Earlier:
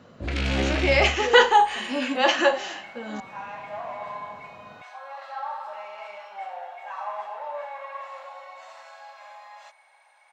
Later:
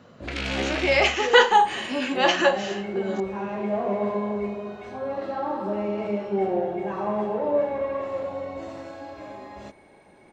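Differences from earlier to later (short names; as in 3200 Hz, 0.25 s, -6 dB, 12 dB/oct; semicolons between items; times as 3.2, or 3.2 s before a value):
first sound: add low shelf 160 Hz -10 dB; second sound: remove inverse Chebyshev high-pass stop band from 390 Hz, stop band 40 dB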